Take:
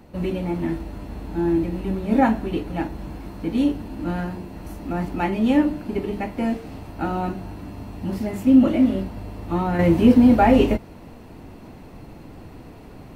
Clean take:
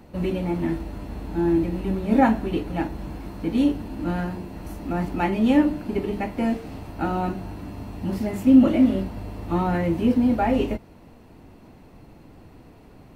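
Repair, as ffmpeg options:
ffmpeg -i in.wav -af "asetnsamples=nb_out_samples=441:pad=0,asendcmd='9.79 volume volume -6.5dB',volume=0dB" out.wav

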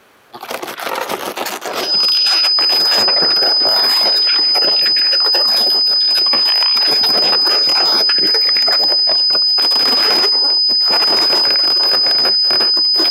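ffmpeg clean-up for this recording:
ffmpeg -i in.wav -af "bandreject=frequency=5000:width=30" out.wav

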